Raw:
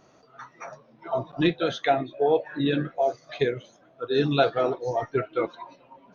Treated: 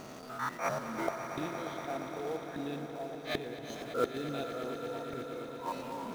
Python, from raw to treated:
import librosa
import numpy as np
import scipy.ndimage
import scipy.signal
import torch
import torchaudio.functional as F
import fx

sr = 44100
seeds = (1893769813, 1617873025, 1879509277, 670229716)

p1 = fx.spec_steps(x, sr, hold_ms=100)
p2 = fx.peak_eq(p1, sr, hz=240.0, db=8.0, octaves=0.32)
p3 = fx.quant_companded(p2, sr, bits=4)
p4 = p2 + F.gain(torch.from_numpy(p3), -6.5).numpy()
p5 = fx.gate_flip(p4, sr, shuts_db=-26.0, range_db=-27)
p6 = p5 + fx.echo_swell(p5, sr, ms=117, loudest=5, wet_db=-13, dry=0)
p7 = fx.attack_slew(p6, sr, db_per_s=170.0)
y = F.gain(torch.from_numpy(p7), 8.0).numpy()